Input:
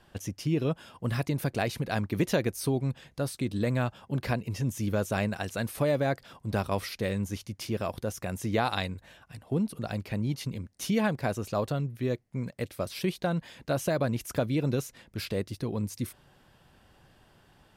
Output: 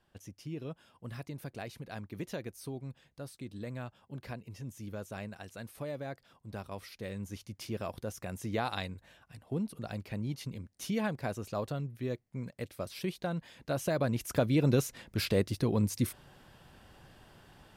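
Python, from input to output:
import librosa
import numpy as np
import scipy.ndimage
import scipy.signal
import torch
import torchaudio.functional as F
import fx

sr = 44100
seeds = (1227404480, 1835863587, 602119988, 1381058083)

y = fx.gain(x, sr, db=fx.line((6.79, -13.0), (7.54, -6.0), (13.5, -6.0), (14.86, 3.0)))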